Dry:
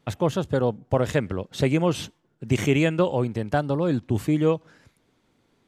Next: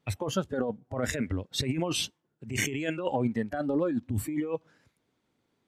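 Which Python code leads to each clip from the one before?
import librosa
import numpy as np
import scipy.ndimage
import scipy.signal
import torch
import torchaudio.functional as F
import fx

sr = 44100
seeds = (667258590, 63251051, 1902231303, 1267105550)

y = fx.highpass(x, sr, hz=58.0, slope=6)
y = fx.noise_reduce_blind(y, sr, reduce_db=14)
y = fx.over_compress(y, sr, threshold_db=-29.0, ratio=-1.0)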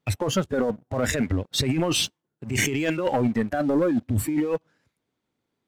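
y = fx.leveller(x, sr, passes=2)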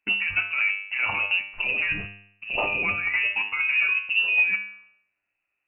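y = fx.comb_fb(x, sr, f0_hz=100.0, decay_s=0.65, harmonics='all', damping=0.0, mix_pct=80)
y = y + 10.0 ** (-23.0 / 20.0) * np.pad(y, (int(70 * sr / 1000.0), 0))[:len(y)]
y = fx.freq_invert(y, sr, carrier_hz=2800)
y = F.gain(torch.from_numpy(y), 8.5).numpy()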